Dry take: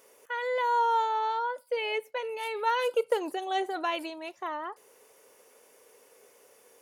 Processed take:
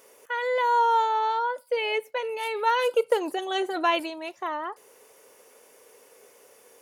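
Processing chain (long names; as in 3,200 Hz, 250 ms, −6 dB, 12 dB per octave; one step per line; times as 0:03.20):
0:03.38–0:04.00: comb filter 5.9 ms, depth 53%
level +4 dB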